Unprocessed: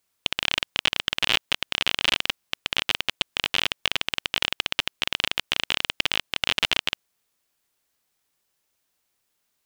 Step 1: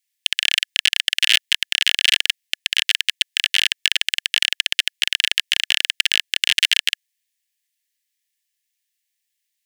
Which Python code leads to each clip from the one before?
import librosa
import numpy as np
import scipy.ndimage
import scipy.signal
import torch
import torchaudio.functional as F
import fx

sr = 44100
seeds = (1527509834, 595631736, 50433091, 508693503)

y = scipy.signal.sosfilt(scipy.signal.cheby1(8, 1.0, 1700.0, 'highpass', fs=sr, output='sos'), x)
y = fx.leveller(y, sr, passes=2)
y = F.gain(torch.from_numpy(y), 2.5).numpy()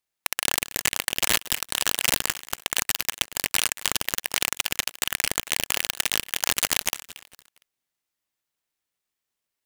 y = fx.echo_feedback(x, sr, ms=230, feedback_pct=33, wet_db=-16.0)
y = fx.noise_mod_delay(y, sr, seeds[0], noise_hz=4800.0, depth_ms=0.075)
y = F.gain(torch.from_numpy(y), -6.0).numpy()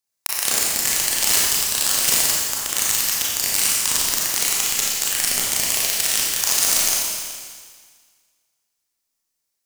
y = fx.high_shelf_res(x, sr, hz=4000.0, db=6.0, q=1.5)
y = fx.rev_schroeder(y, sr, rt60_s=1.7, comb_ms=28, drr_db=-5.5)
y = F.gain(torch.from_numpy(y), -4.5).numpy()